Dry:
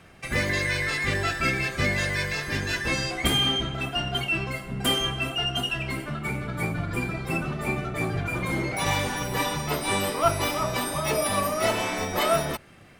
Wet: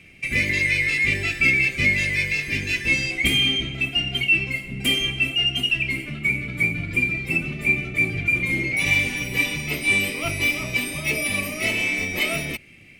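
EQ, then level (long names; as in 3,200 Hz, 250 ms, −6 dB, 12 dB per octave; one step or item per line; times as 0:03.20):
drawn EQ curve 190 Hz 0 dB, 280 Hz +2 dB, 950 Hz −14 dB, 1,600 Hz −10 dB, 2,300 Hz +14 dB, 3,500 Hz 0 dB
0.0 dB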